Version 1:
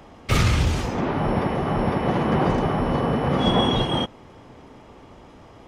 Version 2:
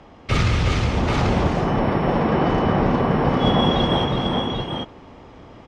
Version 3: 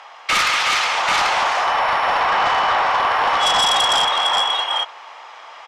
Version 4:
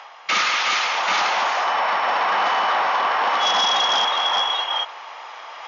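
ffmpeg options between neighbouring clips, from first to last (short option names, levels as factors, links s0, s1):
-af "lowpass=5500,aecho=1:1:201|364|788:0.335|0.631|0.631"
-af "highpass=f=840:w=0.5412,highpass=f=840:w=1.3066,aeval=exprs='0.2*sin(PI/2*2.24*val(0)/0.2)':c=same,volume=1.19"
-af "afftfilt=real='re*between(b*sr/4096,170,6900)':imag='im*between(b*sr/4096,170,6900)':win_size=4096:overlap=0.75,areverse,acompressor=mode=upward:threshold=0.0447:ratio=2.5,areverse,volume=0.75"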